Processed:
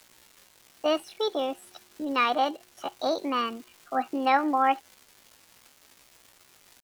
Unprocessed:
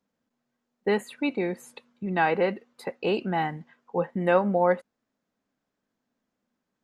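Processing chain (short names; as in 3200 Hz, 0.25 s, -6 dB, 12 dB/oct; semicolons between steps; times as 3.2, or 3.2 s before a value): nonlinear frequency compression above 3400 Hz 1.5:1; crackle 540/s -39 dBFS; pitch shift +7 st; gain -1 dB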